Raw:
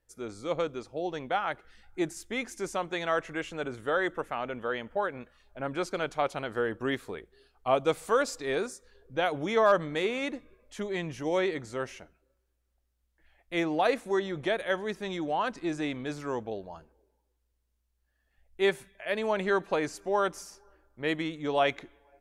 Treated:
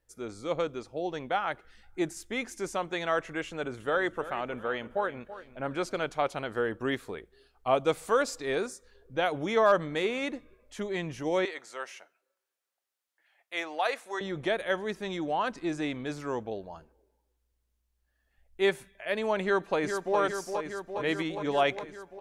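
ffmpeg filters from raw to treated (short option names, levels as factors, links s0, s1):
-filter_complex "[0:a]asettb=1/sr,asplit=3[s0][s1][s2];[s0]atrim=end=3.474[s3];[s1]atrim=start=3.47:end=5.96,asetpts=PTS-STARTPTS,afade=t=in:d=0.004:c=qsin,afade=t=out:st=2.486:d=0.004:c=qsin,aecho=1:1:331|662|993:0.188|0.064|0.0218,atrim=end_sample=109809[s4];[s2]atrim=start=5.956[s5];[s3][s4]acrossfade=d=0.004:c1=hsin:c2=qsin[s6];[s6][s5]acrossfade=d=0.004:c1=qsin:c2=hsin,asettb=1/sr,asplit=3[s7][s8][s9];[s7]atrim=end=11.454[s10];[s8]atrim=start=11.45:end=14.21,asetpts=PTS-STARTPTS,afade=t=in:d=0.004:c=qsin,afade=t=out:st=2.756:d=0.004:c=qsin,highpass=710[s11];[s9]atrim=start=14.206[s12];[s10][s11]acrossfade=d=0.004:c1=hsin:c2=qsin[s13];[s13][s12]acrossfade=d=0.004:c1=qsin:c2=hsin,asplit=2[s14][s15];[s15]afade=t=in:st=19.42:d=0.01,afade=t=out:st=20.19:d=0.01,aecho=0:1:410|820|1230|1640|2050|2460|2870|3280|3690|4100|4510|4920:0.473151|0.354863|0.266148|0.199611|0.149708|0.112281|0.0842108|0.0631581|0.0473686|0.0355264|0.0266448|0.0199836[s16];[s14][s16]amix=inputs=2:normalize=0"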